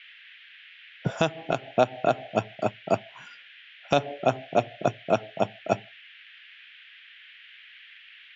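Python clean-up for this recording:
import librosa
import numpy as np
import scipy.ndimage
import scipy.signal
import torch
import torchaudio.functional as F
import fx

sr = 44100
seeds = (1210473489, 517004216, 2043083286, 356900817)

y = fx.noise_reduce(x, sr, print_start_s=6.66, print_end_s=7.16, reduce_db=20.0)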